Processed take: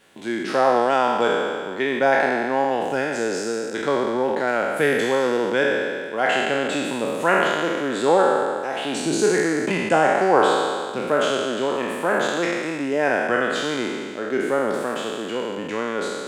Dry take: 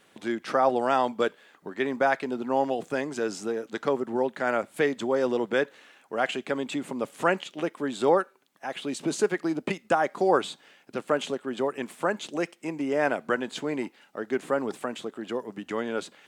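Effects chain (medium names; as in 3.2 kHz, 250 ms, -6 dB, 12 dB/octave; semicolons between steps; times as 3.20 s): spectral sustain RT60 2.00 s; band-stop 1.2 kHz, Q 13; trim +2 dB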